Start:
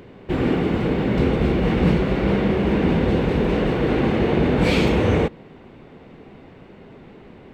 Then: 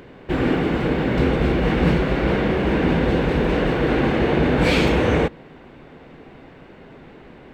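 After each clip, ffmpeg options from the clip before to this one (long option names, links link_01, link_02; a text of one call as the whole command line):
ffmpeg -i in.wav -af "equalizer=frequency=100:width_type=o:width=0.33:gain=-9,equalizer=frequency=200:width_type=o:width=0.33:gain=-6,equalizer=frequency=400:width_type=o:width=0.33:gain=-3,equalizer=frequency=1600:width_type=o:width=0.33:gain=4,volume=2dB" out.wav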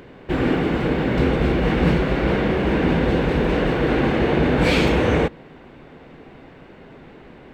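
ffmpeg -i in.wav -af anull out.wav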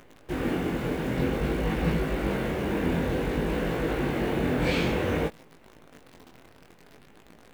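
ffmpeg -i in.wav -af "acrusher=bits=7:dc=4:mix=0:aa=0.000001,flanger=delay=18:depth=6:speed=0.54,volume=-5.5dB" out.wav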